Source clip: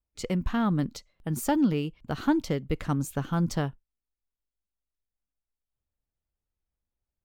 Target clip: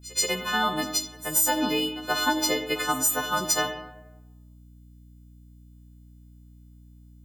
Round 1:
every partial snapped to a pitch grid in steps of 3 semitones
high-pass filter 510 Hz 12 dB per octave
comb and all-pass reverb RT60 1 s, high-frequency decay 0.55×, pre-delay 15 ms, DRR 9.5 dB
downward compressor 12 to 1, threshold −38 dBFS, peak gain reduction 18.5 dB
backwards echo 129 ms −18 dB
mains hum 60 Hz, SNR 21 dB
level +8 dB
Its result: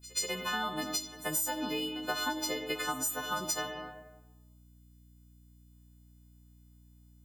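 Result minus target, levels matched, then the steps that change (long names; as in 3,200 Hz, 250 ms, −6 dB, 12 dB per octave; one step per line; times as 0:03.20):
downward compressor: peak gain reduction +10.5 dB
change: downward compressor 12 to 1, threshold −26.5 dBFS, peak gain reduction 8 dB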